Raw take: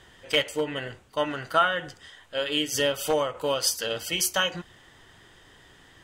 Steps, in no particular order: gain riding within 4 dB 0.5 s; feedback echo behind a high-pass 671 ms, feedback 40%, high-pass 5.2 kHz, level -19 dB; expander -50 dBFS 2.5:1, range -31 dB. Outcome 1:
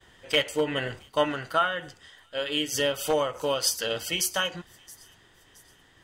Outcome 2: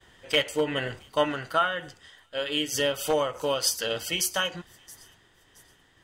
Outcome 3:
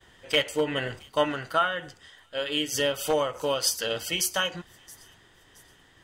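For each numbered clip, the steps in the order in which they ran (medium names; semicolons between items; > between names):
expander > gain riding > feedback echo behind a high-pass; gain riding > feedback echo behind a high-pass > expander; feedback echo behind a high-pass > expander > gain riding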